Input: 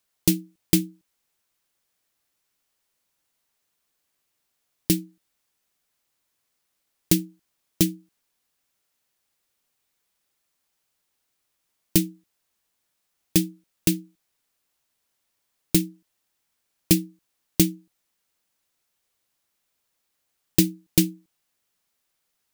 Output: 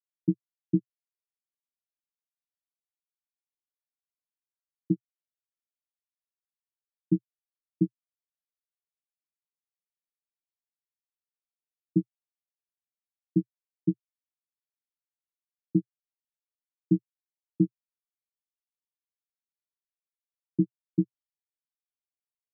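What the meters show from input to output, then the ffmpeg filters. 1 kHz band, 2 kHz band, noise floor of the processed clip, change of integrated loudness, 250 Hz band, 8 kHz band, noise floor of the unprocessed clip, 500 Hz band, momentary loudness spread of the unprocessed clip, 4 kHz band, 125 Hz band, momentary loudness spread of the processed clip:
can't be measured, below −40 dB, below −85 dBFS, −6.5 dB, −4.0 dB, below −40 dB, −77 dBFS, −5.0 dB, 12 LU, below −40 dB, −4.0 dB, 4 LU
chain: -af "dynaudnorm=framelen=780:gausssize=11:maxgain=5dB,aresample=8000,acrusher=bits=2:mix=0:aa=0.5,aresample=44100,asuperpass=centerf=210:order=12:qfactor=0.87,volume=-3.5dB"

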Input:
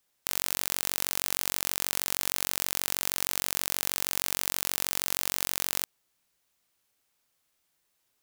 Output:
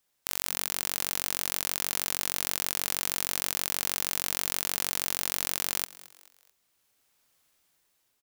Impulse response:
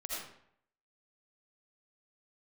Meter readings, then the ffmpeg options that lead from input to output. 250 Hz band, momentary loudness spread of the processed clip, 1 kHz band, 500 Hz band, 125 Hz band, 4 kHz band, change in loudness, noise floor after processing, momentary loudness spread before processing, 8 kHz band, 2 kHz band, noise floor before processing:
0.0 dB, 1 LU, 0.0 dB, 0.0 dB, 0.0 dB, 0.0 dB, 0.0 dB, −74 dBFS, 1 LU, 0.0 dB, 0.0 dB, −76 dBFS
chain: -filter_complex "[0:a]dynaudnorm=framelen=370:gausssize=7:maxgain=12.5dB,asplit=4[link_01][link_02][link_03][link_04];[link_02]adelay=219,afreqshift=130,volume=-19dB[link_05];[link_03]adelay=438,afreqshift=260,volume=-26.1dB[link_06];[link_04]adelay=657,afreqshift=390,volume=-33.3dB[link_07];[link_01][link_05][link_06][link_07]amix=inputs=4:normalize=0,volume=-1dB"

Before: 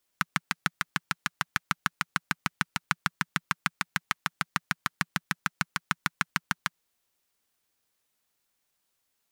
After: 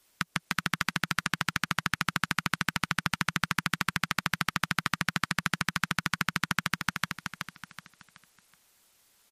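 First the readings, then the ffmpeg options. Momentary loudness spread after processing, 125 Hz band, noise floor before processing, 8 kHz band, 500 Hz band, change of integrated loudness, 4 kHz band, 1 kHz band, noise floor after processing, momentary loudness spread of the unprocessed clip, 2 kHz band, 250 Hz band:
5 LU, +4.5 dB, −78 dBFS, +2.0 dB, +4.5 dB, +1.5 dB, +3.5 dB, +1.0 dB, −71 dBFS, 3 LU, +2.0 dB, +4.5 dB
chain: -filter_complex "[0:a]acrossover=split=680|5600[link_01][link_02][link_03];[link_01]acompressor=threshold=-39dB:ratio=4[link_04];[link_02]acompressor=threshold=-34dB:ratio=4[link_05];[link_03]acompressor=threshold=-48dB:ratio=4[link_06];[link_04][link_05][link_06]amix=inputs=3:normalize=0,aecho=1:1:375|750|1125|1500|1875:0.631|0.233|0.0864|0.032|0.0118,alimiter=level_in=19.5dB:limit=-1dB:release=50:level=0:latency=1,volume=-7.5dB" -ar 44100 -c:a libmp3lame -b:a 56k

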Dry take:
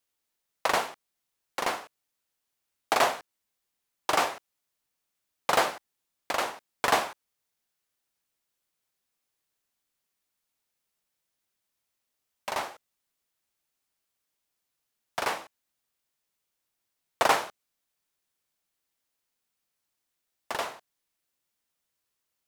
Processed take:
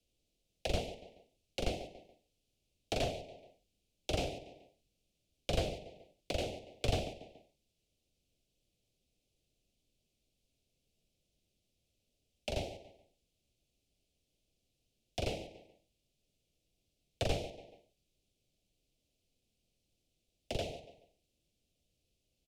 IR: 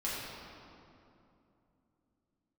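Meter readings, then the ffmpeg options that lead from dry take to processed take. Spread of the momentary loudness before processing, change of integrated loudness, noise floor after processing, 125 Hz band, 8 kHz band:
14 LU, −10.5 dB, −83 dBFS, +11.0 dB, −12.0 dB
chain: -filter_complex "[0:a]asplit=2[link_01][link_02];[link_02]adelay=142,lowpass=frequency=4800:poles=1,volume=-18dB,asplit=2[link_03][link_04];[link_04]adelay=142,lowpass=frequency=4800:poles=1,volume=0.29,asplit=2[link_05][link_06];[link_06]adelay=142,lowpass=frequency=4800:poles=1,volume=0.29[link_07];[link_01][link_03][link_05][link_07]amix=inputs=4:normalize=0,acrossover=split=120[link_08][link_09];[link_09]acompressor=threshold=-42dB:ratio=2[link_10];[link_08][link_10]amix=inputs=2:normalize=0,asuperstop=centerf=1300:order=8:qfactor=0.7,aemphasis=mode=reproduction:type=bsi,acrossover=split=120|1000|7400[link_11][link_12][link_13][link_14];[link_12]asoftclip=type=tanh:threshold=-37.5dB[link_15];[link_11][link_15][link_13][link_14]amix=inputs=4:normalize=0,volume=7dB"

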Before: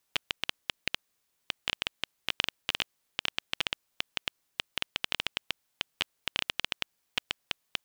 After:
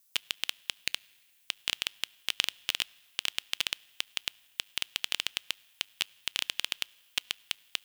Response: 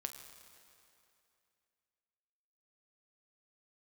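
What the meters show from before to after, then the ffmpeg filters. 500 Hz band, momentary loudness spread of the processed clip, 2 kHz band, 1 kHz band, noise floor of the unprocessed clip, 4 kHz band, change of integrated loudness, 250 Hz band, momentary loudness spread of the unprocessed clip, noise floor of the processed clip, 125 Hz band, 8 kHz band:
−6.5 dB, 5 LU, −1.0 dB, −5.0 dB, −77 dBFS, +1.5 dB, +1.0 dB, −7.0 dB, 5 LU, −65 dBFS, −7.0 dB, +7.5 dB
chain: -filter_complex "[0:a]crystalizer=i=5:c=0,asplit=2[link_01][link_02];[1:a]atrim=start_sample=2205,asetrate=66150,aresample=44100[link_03];[link_02][link_03]afir=irnorm=-1:irlink=0,volume=-10dB[link_04];[link_01][link_04]amix=inputs=2:normalize=0,volume=-8.5dB"

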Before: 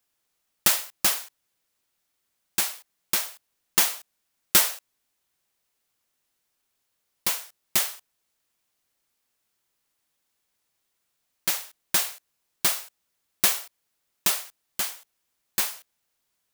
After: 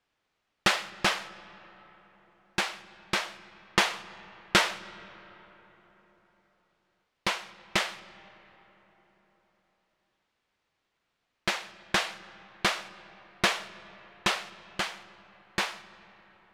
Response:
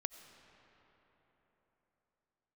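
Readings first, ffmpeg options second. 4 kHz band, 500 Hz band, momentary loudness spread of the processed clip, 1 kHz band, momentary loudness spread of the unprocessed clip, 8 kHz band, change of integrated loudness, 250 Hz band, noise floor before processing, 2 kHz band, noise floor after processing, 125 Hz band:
−1.0 dB, +5.0 dB, 20 LU, +5.0 dB, 11 LU, −12.5 dB, −5.0 dB, +5.0 dB, −77 dBFS, +4.0 dB, −80 dBFS, +5.0 dB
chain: -filter_complex "[0:a]lowpass=3000,asplit=2[link_01][link_02];[1:a]atrim=start_sample=2205[link_03];[link_02][link_03]afir=irnorm=-1:irlink=0,volume=-0.5dB[link_04];[link_01][link_04]amix=inputs=2:normalize=0"

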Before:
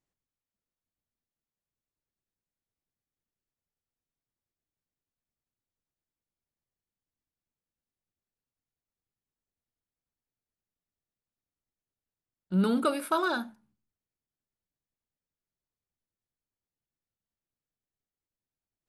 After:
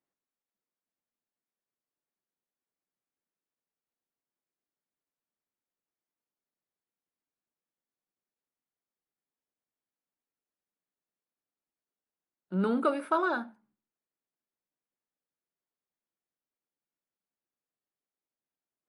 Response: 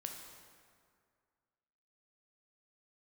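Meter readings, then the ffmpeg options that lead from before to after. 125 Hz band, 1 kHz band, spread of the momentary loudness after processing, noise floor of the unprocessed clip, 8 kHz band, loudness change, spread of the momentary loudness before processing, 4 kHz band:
−4.5 dB, 0.0 dB, 8 LU, below −85 dBFS, below −10 dB, −1.5 dB, 8 LU, −9.5 dB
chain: -filter_complex "[0:a]acrossover=split=190 2300:gain=0.0891 1 0.2[link_01][link_02][link_03];[link_01][link_02][link_03]amix=inputs=3:normalize=0,asplit=2[link_04][link_05];[1:a]atrim=start_sample=2205,atrim=end_sample=3087,asetrate=57330,aresample=44100[link_06];[link_05][link_06]afir=irnorm=-1:irlink=0,volume=-11.5dB[link_07];[link_04][link_07]amix=inputs=2:normalize=0" -ar 32000 -c:a libmp3lame -b:a 48k

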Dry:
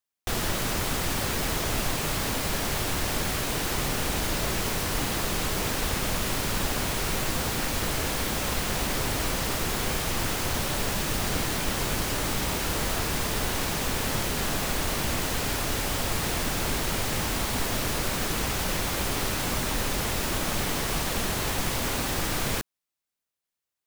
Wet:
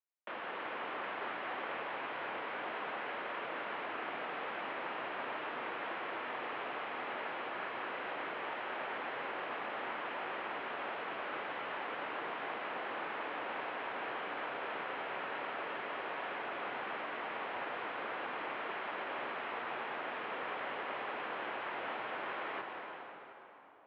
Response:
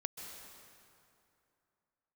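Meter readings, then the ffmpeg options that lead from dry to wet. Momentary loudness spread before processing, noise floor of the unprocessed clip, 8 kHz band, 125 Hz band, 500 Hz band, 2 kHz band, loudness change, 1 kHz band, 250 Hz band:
0 LU, below −85 dBFS, below −40 dB, −32.5 dB, −9.0 dB, −7.5 dB, −12.5 dB, −6.0 dB, −18.0 dB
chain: -filter_complex "[0:a]acrossover=split=590 2500:gain=0.1 1 0.224[link_01][link_02][link_03];[link_01][link_02][link_03]amix=inputs=3:normalize=0,highpass=frequency=350:width_type=q:width=0.5412,highpass=frequency=350:width_type=q:width=1.307,lowpass=frequency=3300:width_type=q:width=0.5176,lowpass=frequency=3300:width_type=q:width=0.7071,lowpass=frequency=3300:width_type=q:width=1.932,afreqshift=-150[link_04];[1:a]atrim=start_sample=2205,asetrate=32193,aresample=44100[link_05];[link_04][link_05]afir=irnorm=-1:irlink=0,volume=-5.5dB"

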